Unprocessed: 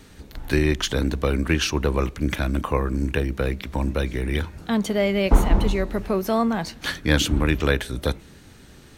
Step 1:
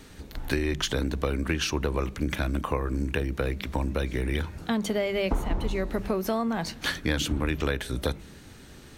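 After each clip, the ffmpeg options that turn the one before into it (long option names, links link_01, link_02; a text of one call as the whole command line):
ffmpeg -i in.wav -af "bandreject=frequency=50:width_type=h:width=6,bandreject=frequency=100:width_type=h:width=6,bandreject=frequency=150:width_type=h:width=6,bandreject=frequency=200:width_type=h:width=6,acompressor=threshold=-23dB:ratio=6" out.wav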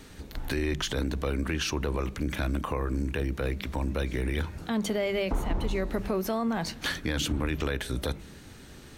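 ffmpeg -i in.wav -af "alimiter=limit=-19.5dB:level=0:latency=1:release=24" out.wav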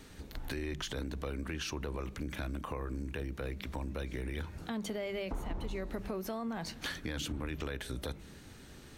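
ffmpeg -i in.wav -af "acompressor=threshold=-33dB:ratio=2,volume=-4.5dB" out.wav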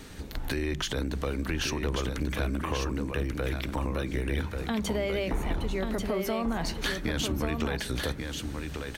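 ffmpeg -i in.wav -af "aecho=1:1:1138:0.531,volume=7.5dB" out.wav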